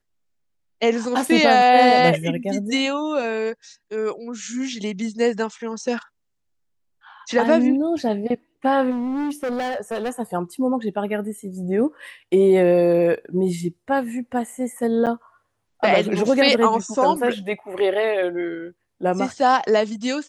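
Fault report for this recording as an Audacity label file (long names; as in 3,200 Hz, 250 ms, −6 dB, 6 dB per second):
8.900000	10.200000	clipping −22 dBFS
15.060000	15.070000	drop-out 8 ms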